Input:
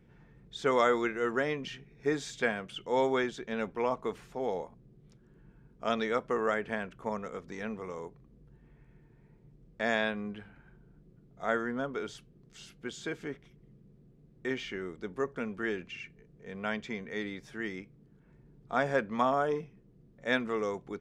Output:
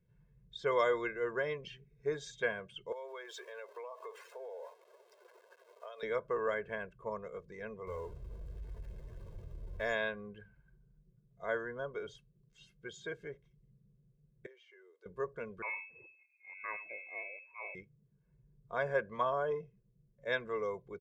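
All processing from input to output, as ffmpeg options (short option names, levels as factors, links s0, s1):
-filter_complex "[0:a]asettb=1/sr,asplit=3[s0][s1][s2];[s0]atrim=end=2.924[s3];[s1]atrim=start=2.92:end=6.03,asetpts=PTS-STARTPTS,afade=t=in:d=0.004:c=qsin,afade=t=out:st=3.106:d=0.004:c=qsin,aeval=exprs='val(0)+0.5*0.01*sgn(val(0))':c=same,highpass=f=460:w=0.5412,highpass=f=460:w=1.3066,acompressor=threshold=0.0141:ratio=12:attack=3.2:release=140:knee=1:detection=peak[s4];[s2]atrim=start=6.026[s5];[s3][s4]acrossfade=d=0.004:c1=hsin:c2=qsin[s6];[s6][s5]acrossfade=d=0.004:c1=qsin:c2=hsin,asettb=1/sr,asplit=3[s7][s8][s9];[s7]atrim=end=7.874[s10];[s8]atrim=start=7.87:end=9.93,asetpts=PTS-STARTPTS,afade=t=in:d=0.004:c=qsin,afade=t=out:st=2.056:d=0.004:c=qsin,aeval=exprs='val(0)+0.5*0.00891*sgn(val(0))':c=same,lowshelf=f=110:t=q:w=3:g=6[s11];[s9]atrim=start=9.926[s12];[s10][s11]acrossfade=d=0.004:c1=hsin:c2=qsin[s13];[s13][s12]acrossfade=d=0.004:c1=qsin:c2=hsin,asettb=1/sr,asplit=3[s14][s15][s16];[s14]atrim=end=14.464[s17];[s15]atrim=start=14.46:end=15.06,asetpts=PTS-STARTPTS,afade=t=in:d=0.004:c=qsin,afade=t=out:st=0.596:d=0.004:c=qsin,highpass=f=420:w=0.5412,highpass=f=420:w=1.3066,acompressor=threshold=0.00178:ratio=2.5:attack=3.2:release=140:knee=1:detection=peak[s18];[s16]atrim=start=15.056[s19];[s17][s18]acrossfade=d=0.004:c1=hsin:c2=qsin[s20];[s20][s19]acrossfade=d=0.004:c1=qsin:c2=hsin,asettb=1/sr,asplit=3[s21][s22][s23];[s21]atrim=end=15.624[s24];[s22]atrim=start=15.62:end=17.75,asetpts=PTS-STARTPTS,afade=t=in:d=0.004:c=qsin,afade=t=out:st=2.126:d=0.004:c=qsin,aeval=exprs='if(lt(val(0),0),0.447*val(0),val(0))':c=same,aecho=1:1:93:0.188,atrim=end_sample=93933,lowpass=f=2200:t=q:w=0.5098,lowpass=f=2200:t=q:w=0.6013,lowpass=f=2200:t=q:w=0.9,lowpass=f=2200:t=q:w=2.563,afreqshift=-2600[s25];[s23]atrim=start=17.746[s26];[s24][s25]acrossfade=d=0.004:c1=hsin:c2=qsin[s27];[s27][s26]acrossfade=d=0.004:c1=qsin:c2=hsin,afftdn=nr=12:nf=-47,aecho=1:1:1.9:0.82,volume=0.422"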